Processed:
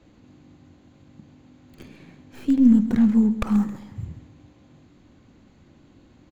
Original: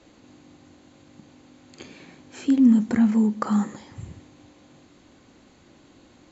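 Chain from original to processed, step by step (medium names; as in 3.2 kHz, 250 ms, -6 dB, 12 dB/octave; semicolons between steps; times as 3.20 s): tracing distortion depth 0.31 ms; tone controls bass +10 dB, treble -5 dB; feedback delay 134 ms, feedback 36%, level -15 dB; trim -4.5 dB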